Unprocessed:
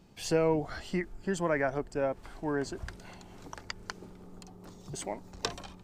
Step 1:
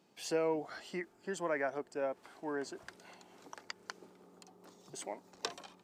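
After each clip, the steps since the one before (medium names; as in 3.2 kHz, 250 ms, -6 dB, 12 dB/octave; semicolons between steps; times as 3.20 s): high-pass 290 Hz 12 dB/octave; trim -5 dB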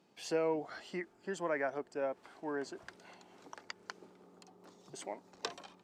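treble shelf 9.5 kHz -10.5 dB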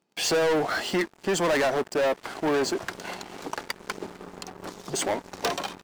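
waveshaping leveller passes 5; trim +3 dB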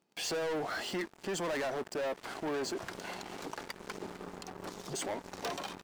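peak limiter -29.5 dBFS, peak gain reduction 10 dB; trim -2 dB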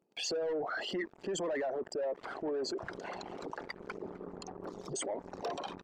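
resonances exaggerated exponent 2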